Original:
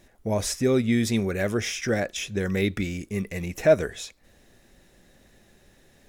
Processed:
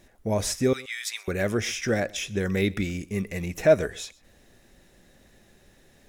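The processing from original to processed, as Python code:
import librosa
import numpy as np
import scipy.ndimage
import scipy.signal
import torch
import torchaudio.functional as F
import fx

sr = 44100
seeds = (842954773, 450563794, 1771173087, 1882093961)

p1 = fx.highpass(x, sr, hz=1200.0, slope=24, at=(0.73, 1.28))
y = p1 + fx.echo_single(p1, sr, ms=126, db=-23.0, dry=0)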